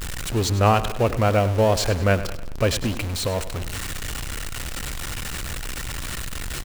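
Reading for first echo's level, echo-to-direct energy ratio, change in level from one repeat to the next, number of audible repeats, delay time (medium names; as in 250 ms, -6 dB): -14.0 dB, -13.0 dB, -6.5 dB, 4, 100 ms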